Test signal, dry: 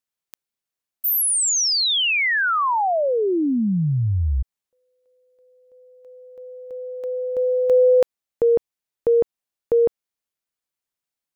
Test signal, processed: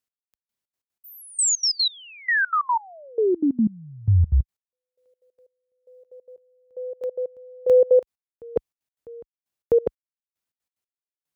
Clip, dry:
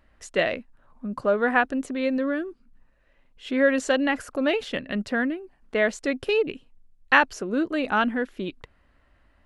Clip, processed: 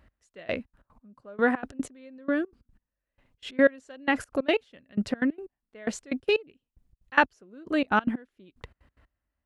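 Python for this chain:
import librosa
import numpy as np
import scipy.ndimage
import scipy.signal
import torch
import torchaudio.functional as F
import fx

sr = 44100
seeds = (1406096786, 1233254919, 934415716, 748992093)

y = fx.low_shelf(x, sr, hz=170.0, db=6.5)
y = fx.step_gate(y, sr, bpm=184, pattern='x.....xx.x.', floor_db=-24.0, edge_ms=4.5)
y = scipy.signal.sosfilt(scipy.signal.butter(2, 46.0, 'highpass', fs=sr, output='sos'), y)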